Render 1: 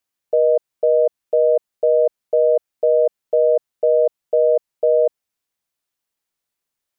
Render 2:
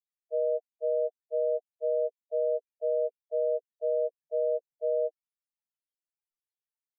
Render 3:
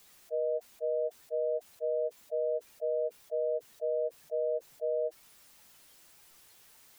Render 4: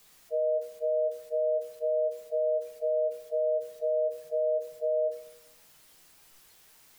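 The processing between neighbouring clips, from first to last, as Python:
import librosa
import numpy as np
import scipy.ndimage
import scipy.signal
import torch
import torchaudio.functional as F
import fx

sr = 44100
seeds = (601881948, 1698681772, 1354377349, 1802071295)

y1 = fx.band_shelf(x, sr, hz=500.0, db=-8.5, octaves=1.0)
y1 = fx.spec_topn(y1, sr, count=2)
y2 = fx.env_flatten(y1, sr, amount_pct=70)
y2 = F.gain(torch.from_numpy(y2), -3.5).numpy()
y3 = fx.room_shoebox(y2, sr, seeds[0], volume_m3=200.0, walls='mixed', distance_m=0.57)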